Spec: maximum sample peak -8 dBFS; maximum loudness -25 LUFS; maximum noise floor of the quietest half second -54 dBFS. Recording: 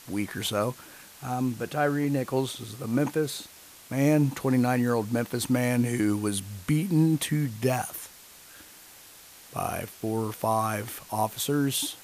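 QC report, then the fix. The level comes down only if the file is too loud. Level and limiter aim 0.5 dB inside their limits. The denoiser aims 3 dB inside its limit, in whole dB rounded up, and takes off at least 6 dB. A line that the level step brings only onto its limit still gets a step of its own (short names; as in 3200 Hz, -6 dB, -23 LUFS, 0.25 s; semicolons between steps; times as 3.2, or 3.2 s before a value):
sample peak -12.0 dBFS: OK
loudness -27.5 LUFS: OK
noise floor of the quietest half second -50 dBFS: fail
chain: denoiser 7 dB, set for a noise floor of -50 dBFS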